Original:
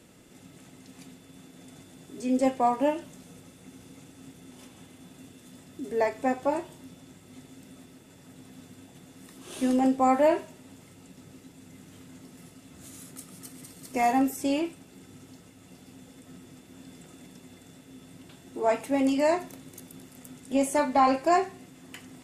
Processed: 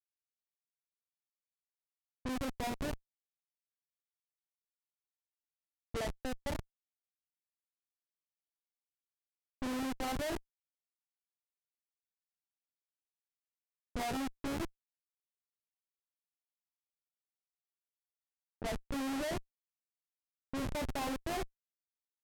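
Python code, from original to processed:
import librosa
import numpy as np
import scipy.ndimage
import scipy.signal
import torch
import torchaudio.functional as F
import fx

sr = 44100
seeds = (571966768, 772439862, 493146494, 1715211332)

y = fx.quant_dither(x, sr, seeds[0], bits=10, dither='none')
y = fx.schmitt(y, sr, flips_db=-25.0)
y = fx.env_lowpass(y, sr, base_hz=670.0, full_db=-29.5)
y = y * 10.0 ** (-5.0 / 20.0)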